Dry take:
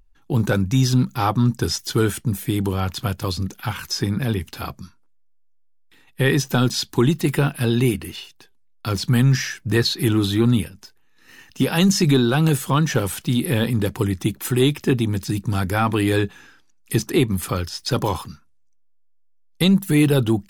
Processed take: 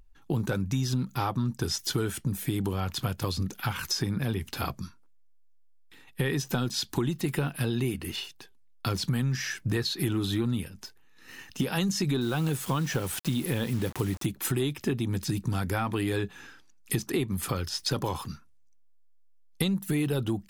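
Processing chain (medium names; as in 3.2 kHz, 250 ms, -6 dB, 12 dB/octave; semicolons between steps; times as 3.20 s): 12.21–14.26 s: word length cut 6-bit, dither none; compression 5:1, threshold -26 dBFS, peak gain reduction 12.5 dB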